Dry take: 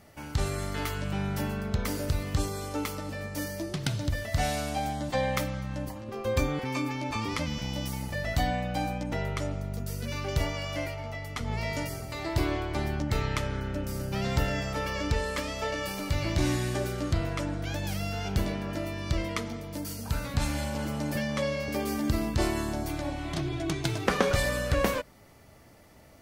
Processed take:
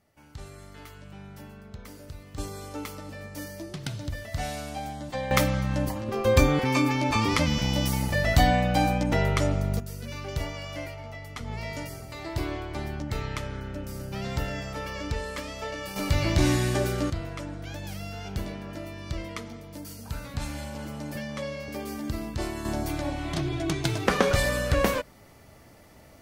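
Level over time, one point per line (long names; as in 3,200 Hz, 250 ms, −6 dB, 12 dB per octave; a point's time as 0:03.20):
−13.5 dB
from 0:02.38 −4 dB
from 0:05.31 +7.5 dB
from 0:09.80 −3 dB
from 0:15.96 +4.5 dB
from 0:17.10 −4.5 dB
from 0:22.65 +2.5 dB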